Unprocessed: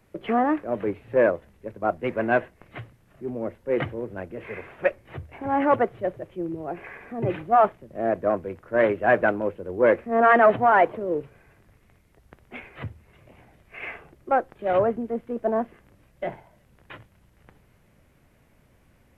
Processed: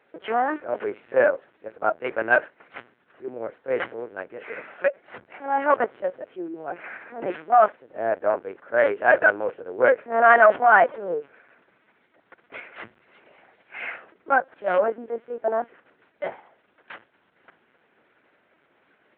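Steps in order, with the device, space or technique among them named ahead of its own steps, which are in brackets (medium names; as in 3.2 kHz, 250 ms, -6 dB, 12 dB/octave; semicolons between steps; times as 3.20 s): 12.71–13.82 s: treble shelf 2.9 kHz +4 dB; talking toy (LPC vocoder at 8 kHz pitch kept; high-pass 380 Hz 12 dB/octave; peaking EQ 1.5 kHz +6.5 dB 0.38 oct); trim +1.5 dB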